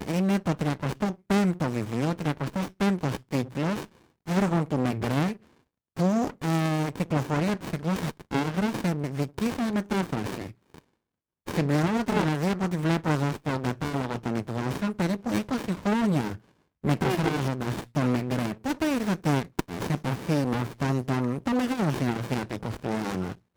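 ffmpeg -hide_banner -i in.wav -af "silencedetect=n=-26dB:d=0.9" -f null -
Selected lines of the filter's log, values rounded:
silence_start: 10.46
silence_end: 11.48 | silence_duration: 1.03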